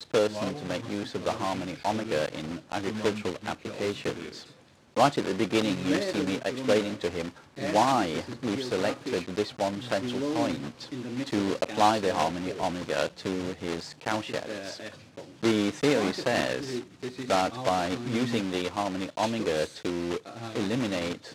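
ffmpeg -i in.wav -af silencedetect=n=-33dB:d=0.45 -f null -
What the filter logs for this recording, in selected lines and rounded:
silence_start: 4.39
silence_end: 4.96 | silence_duration: 0.57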